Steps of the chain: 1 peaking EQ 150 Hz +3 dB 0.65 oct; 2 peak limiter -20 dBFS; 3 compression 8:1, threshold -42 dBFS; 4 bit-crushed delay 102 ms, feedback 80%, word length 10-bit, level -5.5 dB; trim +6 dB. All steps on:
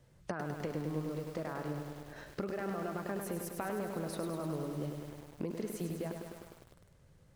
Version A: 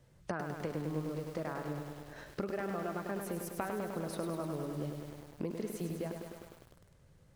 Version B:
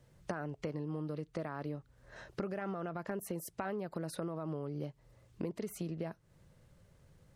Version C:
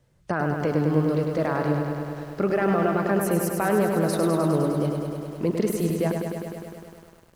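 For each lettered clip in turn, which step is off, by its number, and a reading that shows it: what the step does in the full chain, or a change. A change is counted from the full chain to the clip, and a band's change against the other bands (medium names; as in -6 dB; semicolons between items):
2, mean gain reduction 1.5 dB; 4, 4 kHz band -1.5 dB; 3, mean gain reduction 12.5 dB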